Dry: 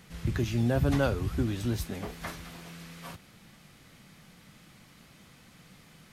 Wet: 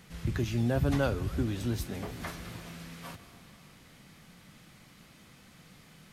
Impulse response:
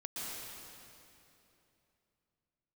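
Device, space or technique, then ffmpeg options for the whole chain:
ducked reverb: -filter_complex "[0:a]asplit=3[s0][s1][s2];[1:a]atrim=start_sample=2205[s3];[s1][s3]afir=irnorm=-1:irlink=0[s4];[s2]apad=whole_len=270250[s5];[s4][s5]sidechaincompress=threshold=0.0126:ratio=8:attack=16:release=184,volume=0.316[s6];[s0][s6]amix=inputs=2:normalize=0,volume=0.794"

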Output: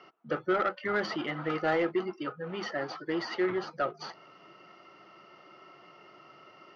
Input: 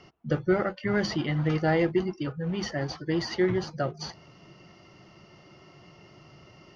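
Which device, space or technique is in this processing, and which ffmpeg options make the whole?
intercom: -af "highpass=350,lowpass=3500,equalizer=f=1300:t=o:w=0.25:g=9.5,asoftclip=type=tanh:threshold=0.106"

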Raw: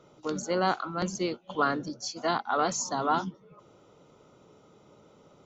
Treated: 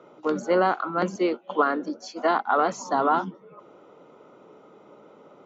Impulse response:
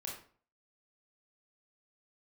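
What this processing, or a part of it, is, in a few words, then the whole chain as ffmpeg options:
DJ mixer with the lows and highs turned down: -filter_complex "[0:a]acrossover=split=200 2600:gain=0.0891 1 0.158[s0][s1][s2];[s0][s1][s2]amix=inputs=3:normalize=0,alimiter=limit=0.126:level=0:latency=1:release=239,asettb=1/sr,asplit=3[s3][s4][s5];[s3]atrim=end=1.164[s6];[s4]atrim=start=1.16:end=2.4,asetpts=PTS-STARTPTS,afade=t=in:d=0.004:c=qsin,afade=t=out:st=1.236:d=0.004:c=qsin,highpass=f=200:w=0.5412,highpass=f=200:w=1.3066[s7];[s5]atrim=start=2.396[s8];[s6][s7]acrossfade=d=0.004:c1=hsin:c2=qsin[s9];[s9][s8]acrossfade=d=0.004:c1=qsin:c2=hsin,volume=2.51"

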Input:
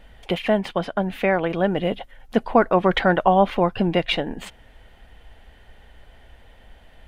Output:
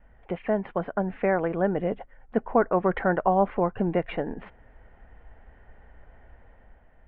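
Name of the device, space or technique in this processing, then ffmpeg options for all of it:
action camera in a waterproof case: -af "adynamicequalizer=threshold=0.02:dfrequency=430:dqfactor=4.7:tfrequency=430:tqfactor=4.7:attack=5:release=100:ratio=0.375:range=2:mode=boostabove:tftype=bell,lowpass=f=1900:w=0.5412,lowpass=f=1900:w=1.3066,dynaudnorm=f=140:g=9:m=1.78,volume=0.422" -ar 48000 -c:a aac -b:a 128k

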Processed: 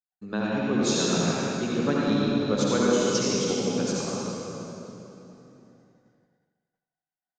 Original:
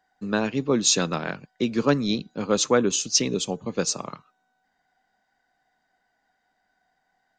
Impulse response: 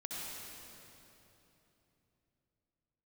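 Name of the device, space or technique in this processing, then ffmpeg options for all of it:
swimming-pool hall: -filter_complex "[1:a]atrim=start_sample=2205[s0];[0:a][s0]afir=irnorm=-1:irlink=0,highshelf=f=6000:g=-7.5,agate=range=0.0224:threshold=0.00178:ratio=3:detection=peak,asplit=2[s1][s2];[s2]adelay=83,lowpass=f=2000:p=1,volume=0.398,asplit=2[s3][s4];[s4]adelay=83,lowpass=f=2000:p=1,volume=0.53,asplit=2[s5][s6];[s6]adelay=83,lowpass=f=2000:p=1,volume=0.53,asplit=2[s7][s8];[s8]adelay=83,lowpass=f=2000:p=1,volume=0.53,asplit=2[s9][s10];[s10]adelay=83,lowpass=f=2000:p=1,volume=0.53,asplit=2[s11][s12];[s12]adelay=83,lowpass=f=2000:p=1,volume=0.53[s13];[s1][s3][s5][s7][s9][s11][s13]amix=inputs=7:normalize=0,volume=0.794"

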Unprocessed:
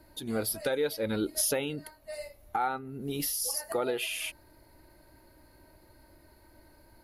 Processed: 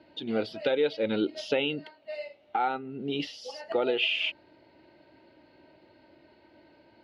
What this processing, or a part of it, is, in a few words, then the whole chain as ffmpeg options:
kitchen radio: -filter_complex "[0:a]highpass=190,equalizer=f=1100:t=q:w=4:g=-9,equalizer=f=1700:t=q:w=4:g=-5,equalizer=f=2900:t=q:w=4:g=8,lowpass=f=3800:w=0.5412,lowpass=f=3800:w=1.3066,asettb=1/sr,asplit=3[s0][s1][s2];[s0]atrim=end=1.854[s3];[s1]atrim=start=1.85:end=2.59,asetpts=PTS-STARTPTS,afade=t=in:d=0.004:c=qsin,afade=t=out:st=0.736:d=0.004:c=qsin,highpass=f=220:p=1[s4];[s2]atrim=start=2.586[s5];[s3][s4]acrossfade=d=0.004:c1=hsin:c2=qsin[s6];[s6][s5]acrossfade=d=0.004:c1=qsin:c2=hsin,volume=1.58"

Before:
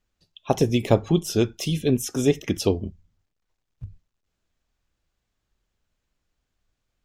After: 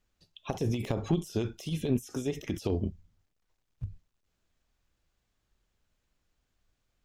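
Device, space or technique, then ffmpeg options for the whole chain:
de-esser from a sidechain: -filter_complex "[0:a]asplit=2[s0][s1];[s1]highpass=f=5700:p=1,apad=whole_len=310904[s2];[s0][s2]sidechaincompress=threshold=0.00501:ratio=16:attack=2.4:release=34"

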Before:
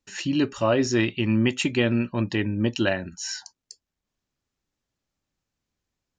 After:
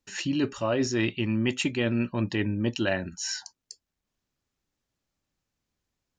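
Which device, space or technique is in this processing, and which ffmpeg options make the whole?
compression on the reversed sound: -af "areverse,acompressor=threshold=0.0794:ratio=6,areverse"

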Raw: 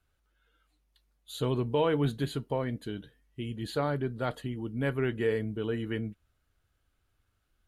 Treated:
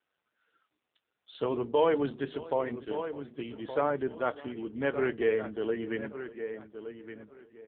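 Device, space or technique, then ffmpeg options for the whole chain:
satellite phone: -filter_complex "[0:a]asplit=3[s0][s1][s2];[s0]afade=t=out:st=1.32:d=0.02[s3];[s1]bandreject=f=50:t=h:w=6,bandreject=f=100:t=h:w=6,bandreject=f=150:t=h:w=6,bandreject=f=200:t=h:w=6,bandreject=f=250:t=h:w=6,bandreject=f=300:t=h:w=6,bandreject=f=350:t=h:w=6,bandreject=f=400:t=h:w=6,afade=t=in:st=1.32:d=0.02,afade=t=out:st=2.94:d=0.02[s4];[s2]afade=t=in:st=2.94:d=0.02[s5];[s3][s4][s5]amix=inputs=3:normalize=0,highpass=320,lowpass=3300,aecho=1:1:597:0.1,asplit=2[s6][s7];[s7]adelay=1168,lowpass=f=3600:p=1,volume=0.299,asplit=2[s8][s9];[s9]adelay=1168,lowpass=f=3600:p=1,volume=0.23,asplit=2[s10][s11];[s11]adelay=1168,lowpass=f=3600:p=1,volume=0.23[s12];[s6][s8][s10][s12]amix=inputs=4:normalize=0,volume=1.58" -ar 8000 -c:a libopencore_amrnb -b:a 5900

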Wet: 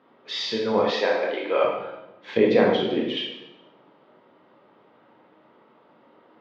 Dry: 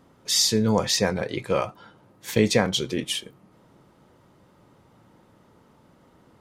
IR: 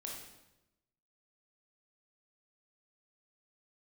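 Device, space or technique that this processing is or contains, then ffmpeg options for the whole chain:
supermarket ceiling speaker: -filter_complex "[0:a]highpass=330,lowpass=6100,lowpass=f=3500:w=0.5412,lowpass=f=3500:w=1.3066[s0];[1:a]atrim=start_sample=2205[s1];[s0][s1]afir=irnorm=-1:irlink=0,asettb=1/sr,asplit=3[s2][s3][s4];[s2]atrim=end=0.914[s5];[s3]atrim=start=0.91:end=1.64,asetpts=PTS-STARTPTS,afade=t=in:d=0.004:c=qsin,afade=t=out:st=0.726:d=0.004:c=qsin,highpass=f=270:w=0.5412,highpass=f=270:w=1.3066[s6];[s4]atrim=start=1.636[s7];[s5][s6]acrossfade=d=0.004:c1=hsin:c2=qsin[s8];[s8][s7]acrossfade=d=0.004:c1=qsin:c2=hsin,asettb=1/sr,asplit=3[s9][s10][s11];[s9]atrim=end=2.374[s12];[s10]atrim=start=2.37:end=3.17,asetpts=PTS-STARTPTS,afade=t=in:d=0.004:c=qsin,afade=t=out:st=0.796:d=0.004:c=qsin,tiltshelf=f=930:g=5.5[s13];[s11]atrim=start=3.166[s14];[s12][s13]acrossfade=d=0.004:c1=hsin:c2=qsin[s15];[s15][s14]acrossfade=d=0.004:c1=qsin:c2=hsin,volume=1.78"

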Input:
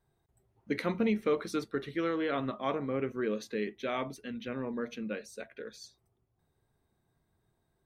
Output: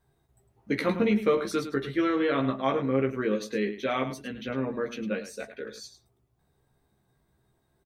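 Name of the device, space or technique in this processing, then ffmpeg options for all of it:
slapback doubling: -filter_complex "[0:a]asplit=3[s0][s1][s2];[s1]adelay=15,volume=0.631[s3];[s2]adelay=106,volume=0.282[s4];[s0][s3][s4]amix=inputs=3:normalize=0,volume=1.58"

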